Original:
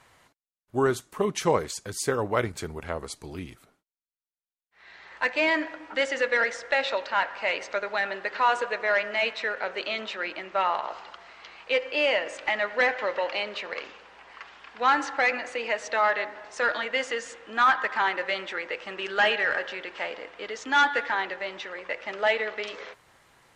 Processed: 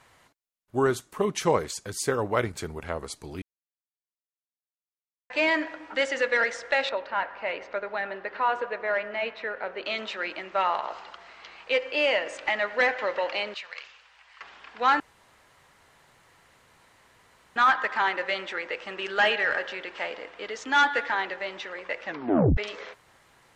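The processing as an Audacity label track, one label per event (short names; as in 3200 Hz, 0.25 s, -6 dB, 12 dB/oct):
3.420000	5.300000	mute
6.890000	9.860000	tape spacing loss at 10 kHz 26 dB
13.540000	14.410000	passive tone stack bass-middle-treble 10-0-10
15.000000	17.560000	room tone
22.040000	22.040000	tape stop 0.53 s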